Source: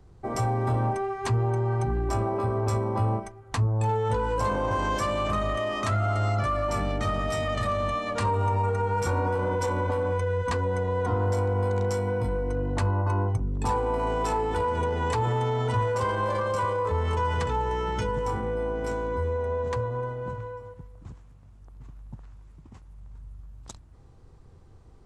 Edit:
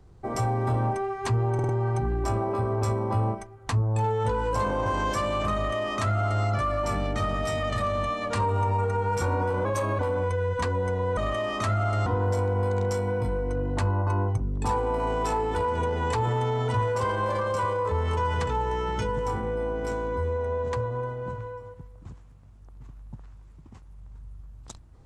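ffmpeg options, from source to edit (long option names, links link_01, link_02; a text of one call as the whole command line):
ffmpeg -i in.wav -filter_complex "[0:a]asplit=8[link_01][link_02][link_03][link_04][link_05][link_06][link_07][link_08];[link_01]atrim=end=1.592[link_09];[link_02]atrim=start=1.538:end=1.592[link_10];[link_03]atrim=start=1.538:end=1.592[link_11];[link_04]atrim=start=1.538:end=9.504[link_12];[link_05]atrim=start=9.5:end=9.88,asetpts=PTS-STARTPTS,asetrate=48951,aresample=44100,atrim=end_sample=15097,asetpts=PTS-STARTPTS[link_13];[link_06]atrim=start=9.876:end=11.062[link_14];[link_07]atrim=start=5.398:end=6.292[link_15];[link_08]atrim=start=11.058[link_16];[link_09][link_10]acrossfade=duration=0.004:curve1=hsin:curve2=hsin[link_17];[link_17][link_11]acrossfade=duration=0.004:curve1=hsin:curve2=hsin[link_18];[link_18][link_12]acrossfade=duration=0.004:curve1=hsin:curve2=hsin[link_19];[link_19][link_13]acrossfade=duration=0.004:curve1=hsin:curve2=hsin[link_20];[link_20][link_14]acrossfade=duration=0.004:curve1=hsin:curve2=hsin[link_21];[link_21][link_15]acrossfade=duration=0.004:curve1=hsin:curve2=hsin[link_22];[link_22][link_16]acrossfade=duration=0.004:curve1=hsin:curve2=hsin" out.wav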